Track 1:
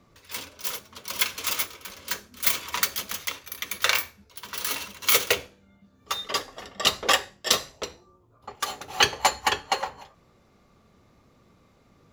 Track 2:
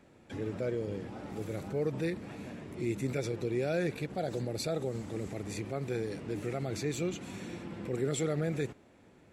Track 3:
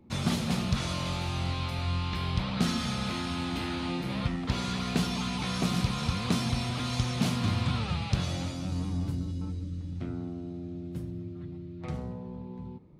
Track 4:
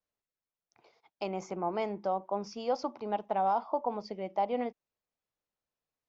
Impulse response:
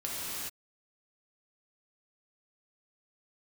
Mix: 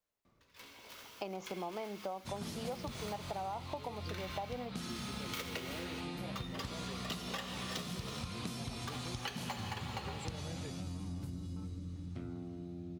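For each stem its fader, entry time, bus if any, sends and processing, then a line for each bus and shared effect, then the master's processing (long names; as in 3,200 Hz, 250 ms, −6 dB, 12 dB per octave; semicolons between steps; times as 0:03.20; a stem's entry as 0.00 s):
−12.5 dB, 0.25 s, send −8 dB, running median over 5 samples; automatic ducking −16 dB, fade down 0.45 s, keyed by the fourth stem
−11.5 dB, 2.05 s, no send, no processing
−7.0 dB, 2.15 s, send −18 dB, high-shelf EQ 7,700 Hz +10 dB
+1.5 dB, 0.00 s, no send, no processing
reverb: on, pre-delay 3 ms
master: downward compressor 6 to 1, threshold −38 dBFS, peak gain reduction 14.5 dB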